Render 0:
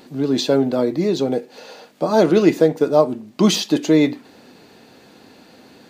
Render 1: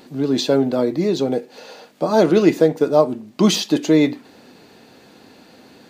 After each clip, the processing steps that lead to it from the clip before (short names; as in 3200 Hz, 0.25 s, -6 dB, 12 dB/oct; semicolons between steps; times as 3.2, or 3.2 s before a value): nothing audible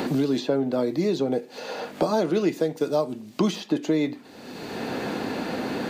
three-band squash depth 100%; gain -7.5 dB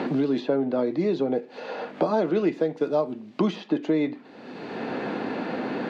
BPF 150–2800 Hz